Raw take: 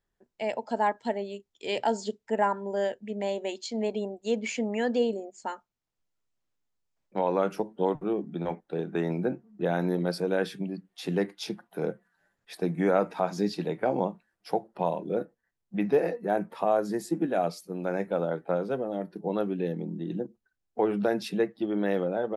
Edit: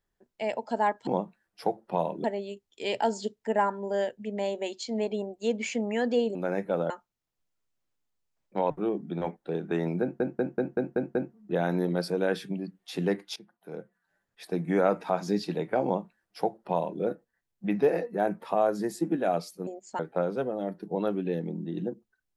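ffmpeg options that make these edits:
-filter_complex "[0:a]asplit=15[s0][s1][s2][s3][s4][s5][s6][s7][s8][s9][s10][s11][s12][s13][s14];[s0]atrim=end=1.072[s15];[s1]atrim=start=13.938:end=15.112[s16];[s2]atrim=start=1.068:end=5.182[s17];[s3]atrim=start=17.768:end=18.322[s18];[s4]atrim=start=5.498:end=7.302[s19];[s5]atrim=start=7.938:end=9.442[s20];[s6]atrim=start=9.248:end=9.442[s21];[s7]atrim=start=9.248:end=9.442[s22];[s8]atrim=start=9.248:end=9.442[s23];[s9]atrim=start=9.248:end=9.442[s24];[s10]atrim=start=9.248:end=9.442[s25];[s11]atrim=start=9.248:end=11.46,asetpts=PTS-STARTPTS,afade=t=out:st=2.208:d=0.004:c=hsin:silence=0.1[s26];[s12]atrim=start=11.46:end=17.772,asetpts=PTS-STARTPTS,afade=t=in:d=1.46:silence=0.1[s27];[s13]atrim=start=5.178:end=5.502[s28];[s14]atrim=start=18.318[s29];[s15][s16]acrossfade=d=0.004:c1=hsin:c2=hsin[s30];[s30][s17]acrossfade=d=0.004:c1=hsin:c2=hsin[s31];[s31][s18]acrossfade=d=0.004:c1=hsin:c2=hsin[s32];[s32][s19]acrossfade=d=0.004:c1=hsin:c2=hsin[s33];[s33][s20]acrossfade=d=0.004:c1=hsin:c2=hsin[s34];[s34][s21]acrossfade=d=0.004:c1=hsin:c2=hsin[s35];[s35][s22]acrossfade=d=0.004:c1=hsin:c2=hsin[s36];[s36][s23]acrossfade=d=0.004:c1=hsin:c2=hsin[s37];[s37][s24]acrossfade=d=0.004:c1=hsin:c2=hsin[s38];[s38][s25]acrossfade=d=0.004:c1=hsin:c2=hsin[s39];[s26][s27]concat=n=2:v=0:a=1[s40];[s39][s40]acrossfade=d=0.004:c1=hsin:c2=hsin[s41];[s41][s28]acrossfade=d=0.004:c1=hsin:c2=hsin[s42];[s42][s29]acrossfade=d=0.004:c1=hsin:c2=hsin"

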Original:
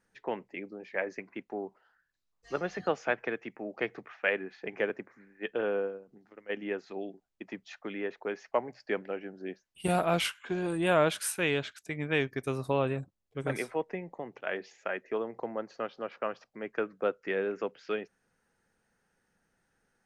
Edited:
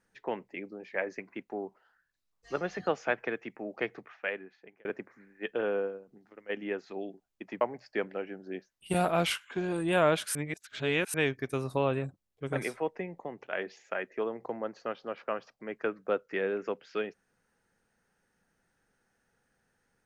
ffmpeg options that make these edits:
-filter_complex "[0:a]asplit=5[s0][s1][s2][s3][s4];[s0]atrim=end=4.85,asetpts=PTS-STARTPTS,afade=t=out:st=3.79:d=1.06[s5];[s1]atrim=start=4.85:end=7.612,asetpts=PTS-STARTPTS,afade=t=in:d=0.004:c=hsin[s6];[s2]atrim=start=8.548:end=11.292[s7];[s3]atrim=start=11.288:end=12.082,asetpts=PTS-STARTPTS,areverse[s8];[s4]atrim=start=12.078[s9];[s5][s6]concat=n=2:v=0:a=1[s10];[s10][s7]acrossfade=d=0.004:c1=hsin:c2=hsin[s11];[s11][s8]acrossfade=d=0.004:c1=hsin:c2=hsin[s12];[s12][s9]acrossfade=d=0.004:c1=hsin:c2=hsin"

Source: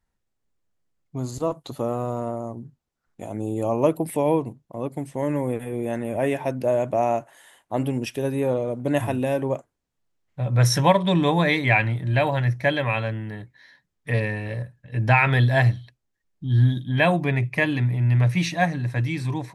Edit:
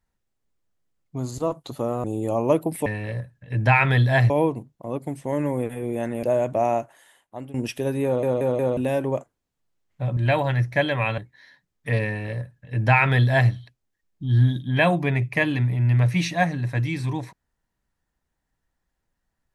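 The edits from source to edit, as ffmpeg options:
-filter_complex "[0:a]asplit=12[s0][s1][s2][s3][s4][s5][s6][s7][s8][s9][s10][s11];[s0]atrim=end=2.042[s12];[s1]atrim=start=3.378:end=4.202[s13];[s2]atrim=start=14.278:end=15.722[s14];[s3]atrim=start=4.198:end=6.132[s15];[s4]atrim=start=6.608:end=7.92,asetpts=PTS-STARTPTS,afade=t=out:st=0.502:d=0.81:silence=0.125893[s16];[s5]atrim=start=7.92:end=8.612,asetpts=PTS-STARTPTS,afade=t=in:d=0.004:c=hsin:silence=0.125893[s17];[s6]atrim=start=8.428:end=8.612[s18];[s7]atrim=start=8.428:end=8.612[s19];[s8]atrim=start=8.428:end=8.612[s20];[s9]atrim=start=9.148:end=10.552[s21];[s10]atrim=start=12.048:end=13.062[s22];[s11]atrim=start=13.388[s23];[s12][s13]acrossfade=d=0.004:c1=hsin:c2=hsin[s24];[s24][s14]acrossfade=d=0.004:c1=hsin:c2=hsin[s25];[s25][s15]acrossfade=d=0.004:c1=hsin:c2=hsin[s26];[s16][s17]concat=n=2:v=0:a=1[s27];[s26][s27]acrossfade=d=0.004:c1=hsin:c2=hsin[s28];[s28][s18]acrossfade=d=0.004:c1=hsin:c2=hsin[s29];[s29][s19]acrossfade=d=0.004:c1=hsin:c2=hsin[s30];[s30][s20]acrossfade=d=0.004:c1=hsin:c2=hsin[s31];[s31][s21]acrossfade=d=0.004:c1=hsin:c2=hsin[s32];[s32][s22]acrossfade=d=0.004:c1=hsin:c2=hsin[s33];[s33][s23]acrossfade=d=0.004:c1=hsin:c2=hsin"

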